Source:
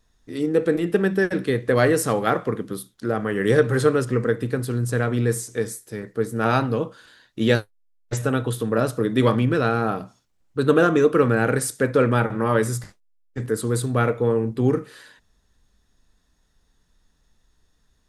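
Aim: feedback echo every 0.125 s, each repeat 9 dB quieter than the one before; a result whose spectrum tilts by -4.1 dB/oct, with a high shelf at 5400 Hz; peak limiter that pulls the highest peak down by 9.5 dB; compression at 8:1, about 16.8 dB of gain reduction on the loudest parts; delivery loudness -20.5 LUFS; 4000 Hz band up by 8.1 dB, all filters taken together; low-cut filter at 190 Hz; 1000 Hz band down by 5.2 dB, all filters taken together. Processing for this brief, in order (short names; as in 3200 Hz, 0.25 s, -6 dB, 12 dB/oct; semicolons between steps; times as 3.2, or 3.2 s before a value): HPF 190 Hz; bell 1000 Hz -9 dB; bell 4000 Hz +7.5 dB; high shelf 5400 Hz +7.5 dB; compressor 8:1, threshold -32 dBFS; limiter -27.5 dBFS; feedback echo 0.125 s, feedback 35%, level -9 dB; gain +17.5 dB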